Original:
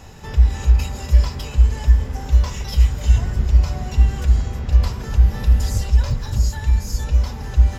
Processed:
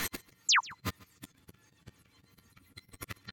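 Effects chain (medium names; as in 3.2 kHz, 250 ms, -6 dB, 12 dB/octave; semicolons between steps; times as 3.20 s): delay that grows with frequency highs early, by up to 292 ms; three-band isolator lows -13 dB, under 520 Hz, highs -21 dB, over 5.7 kHz; slow attack 343 ms; in parallel at +2.5 dB: peak limiter -33.5 dBFS, peak gain reduction 11 dB; on the sum: inverted gate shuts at -29 dBFS, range -40 dB; saturation -33 dBFS, distortion -19 dB; painted sound fall, 1.14–1.39 s, 370–3300 Hz -32 dBFS; doubling 25 ms -8.5 dB; on a send: delay 330 ms -21.5 dB; on the sum: speed mistake 33 rpm record played at 78 rpm; trim +8 dB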